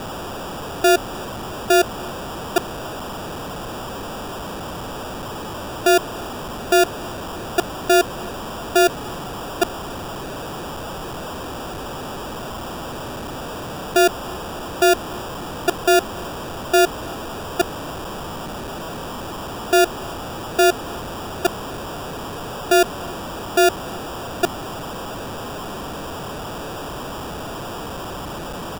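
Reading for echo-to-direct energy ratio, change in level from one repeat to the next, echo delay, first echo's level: −23.5 dB, −10.5 dB, 289 ms, −24.0 dB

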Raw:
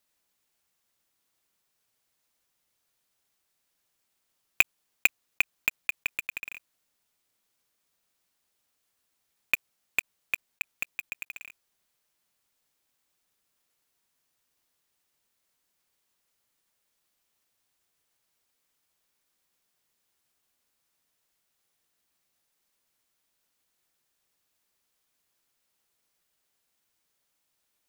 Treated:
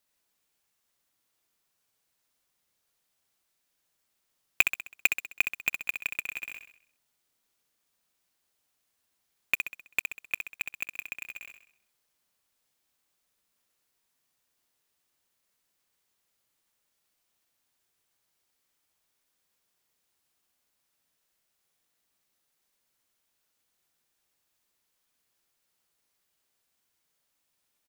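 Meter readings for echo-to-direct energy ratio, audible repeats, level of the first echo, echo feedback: −6.0 dB, 5, −7.0 dB, 48%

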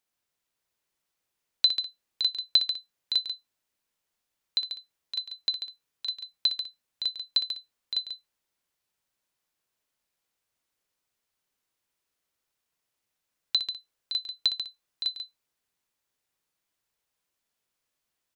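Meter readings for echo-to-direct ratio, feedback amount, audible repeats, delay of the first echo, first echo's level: −4.5 dB, repeats not evenly spaced, 3, 61 ms, −11.0 dB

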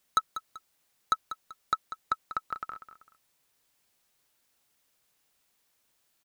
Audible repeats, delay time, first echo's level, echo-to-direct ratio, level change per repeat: 2, 193 ms, −12.0 dB, −11.5 dB, −9.5 dB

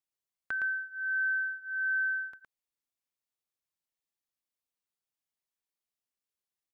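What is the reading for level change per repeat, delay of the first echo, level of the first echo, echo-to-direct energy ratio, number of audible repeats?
repeats not evenly spaced, 113 ms, −5.0 dB, −5.0 dB, 1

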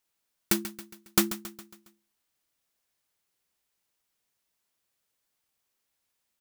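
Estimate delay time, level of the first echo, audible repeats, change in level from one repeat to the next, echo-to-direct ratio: 137 ms, −13.0 dB, 4, −6.0 dB, −12.0 dB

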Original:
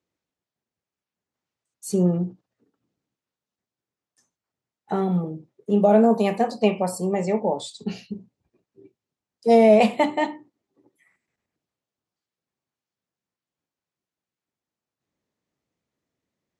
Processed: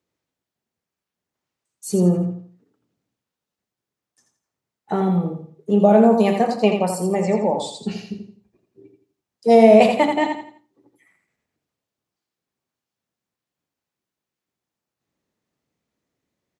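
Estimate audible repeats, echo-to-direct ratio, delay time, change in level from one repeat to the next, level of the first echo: 3, −6.0 dB, 84 ms, −9.5 dB, −6.5 dB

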